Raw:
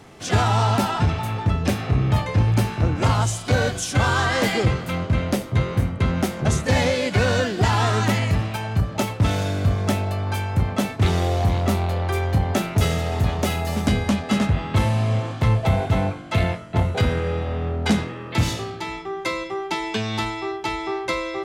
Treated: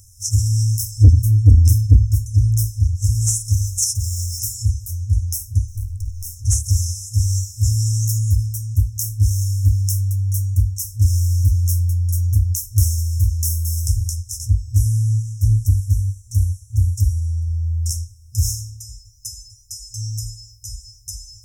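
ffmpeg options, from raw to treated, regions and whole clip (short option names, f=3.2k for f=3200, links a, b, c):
-filter_complex "[0:a]asettb=1/sr,asplit=3[a][b][c];[a]atrim=end=1.024[d];[b]atrim=start=1.02:end=2.06,asetpts=PTS-STARTPTS,afade=t=in:d=0.004:c=qsin,afade=t=out:st=1.036:d=0.004:c=qsin,lowshelf=f=380:g=11,asoftclip=type=hard:threshold=-2dB,highpass=45[e];[c]atrim=start=2.056[f];[d][e]acrossfade=d=0.004:c1=hsin:c2=qsin[g];[g][f]acrossfade=d=0.004:c1=qsin:c2=hsin,asettb=1/sr,asplit=3[h][i][j];[h]atrim=end=3.674[k];[i]atrim=start=3.67:end=4.4,asetpts=PTS-STARTPTS,afade=t=in:d=0.004:c=qsin,afade=t=out:st=0.726:d=0.004:c=qsin,highpass=f=54:p=1,asoftclip=type=hard:threshold=-18.5dB[l];[j]atrim=start=4.396[m];[k][l]acrossfade=d=0.004:c1=hsin:c2=qsin[n];[n][m]acrossfade=d=0.004:c1=qsin:c2=hsin,asettb=1/sr,asplit=3[o][p][q];[o]atrim=end=5.684[r];[p]atrim=start=5.68:end=6.36,asetpts=PTS-STARTPTS,afade=t=in:d=0.004:c=qsin,afade=t=out:st=0.676:d=0.004:c=qsin,acompressor=threshold=-23dB:ratio=4:attack=3.2:release=140:knee=1:detection=peak,aeval=exprs='clip(val(0),-1,0.0299)':c=same[s];[q]atrim=start=6.356[t];[r][s]acrossfade=d=0.004:c1=hsin:c2=qsin[u];[u][t]acrossfade=d=0.004:c1=qsin:c2=hsin,afftfilt=real='re*(1-between(b*sr/4096,110,5200))':imag='im*(1-between(b*sr/4096,110,5200))':win_size=4096:overlap=0.75,highshelf=f=9.1k:g=11.5,acontrast=60"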